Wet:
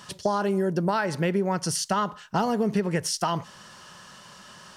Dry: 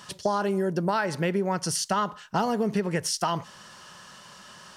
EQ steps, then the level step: bass shelf 350 Hz +2.5 dB; 0.0 dB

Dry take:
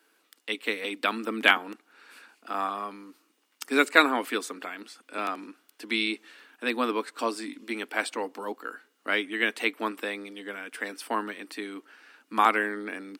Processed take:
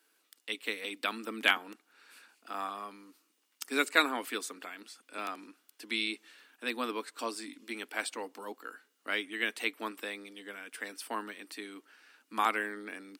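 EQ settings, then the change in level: treble shelf 3.1 kHz +8 dB; -8.5 dB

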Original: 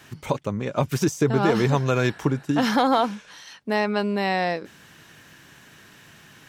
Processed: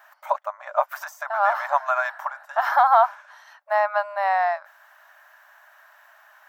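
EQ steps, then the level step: high-order bell 5 kHz -16 dB 2.6 oct; dynamic bell 1.2 kHz, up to +5 dB, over -37 dBFS, Q 0.88; brick-wall FIR high-pass 570 Hz; +2.5 dB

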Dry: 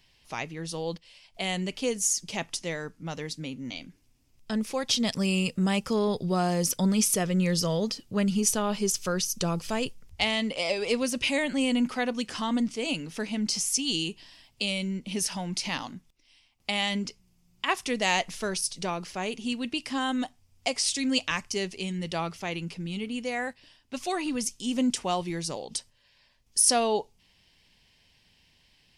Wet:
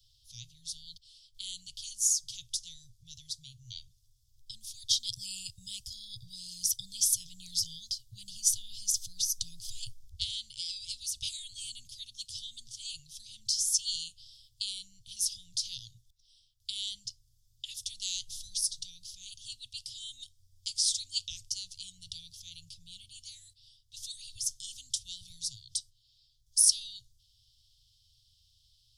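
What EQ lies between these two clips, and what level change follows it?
Chebyshev band-stop 120–3400 Hz, order 5; 0.0 dB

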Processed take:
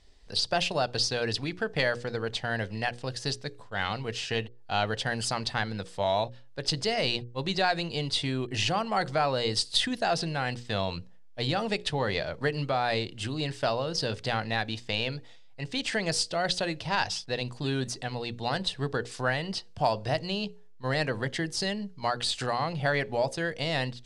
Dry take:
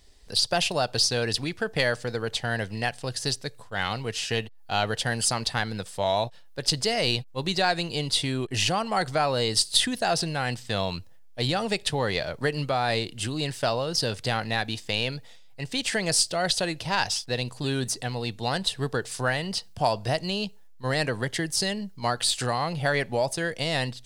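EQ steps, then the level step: distance through air 75 m; hum notches 60/120/180/240/300/360/420/480/540 Hz; -1.5 dB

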